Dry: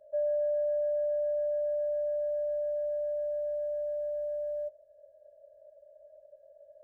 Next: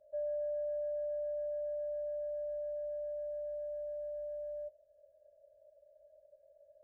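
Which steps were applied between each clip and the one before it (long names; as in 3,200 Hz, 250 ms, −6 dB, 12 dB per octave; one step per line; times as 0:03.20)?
low-shelf EQ 250 Hz +7 dB
level −8.5 dB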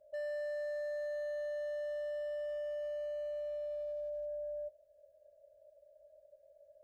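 hard clipping −38 dBFS, distortion −15 dB
level +1 dB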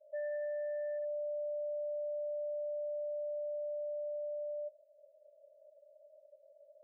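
gate on every frequency bin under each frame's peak −15 dB strong
level +1 dB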